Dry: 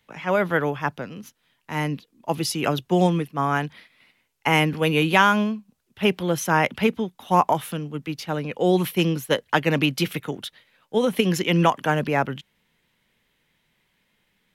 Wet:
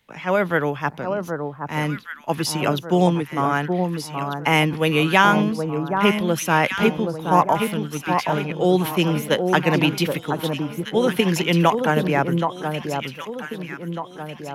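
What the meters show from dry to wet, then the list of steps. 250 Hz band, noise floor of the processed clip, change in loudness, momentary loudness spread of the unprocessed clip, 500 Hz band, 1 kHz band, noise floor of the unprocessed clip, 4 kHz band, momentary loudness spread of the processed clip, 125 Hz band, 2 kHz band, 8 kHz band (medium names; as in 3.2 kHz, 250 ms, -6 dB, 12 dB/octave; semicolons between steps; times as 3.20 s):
+3.0 dB, -39 dBFS, +1.5 dB, 12 LU, +3.0 dB, +3.0 dB, -70 dBFS, +2.0 dB, 11 LU, +3.0 dB, +2.0 dB, +2.0 dB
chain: echo whose repeats swap between lows and highs 774 ms, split 1.3 kHz, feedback 65%, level -5 dB; trim +1.5 dB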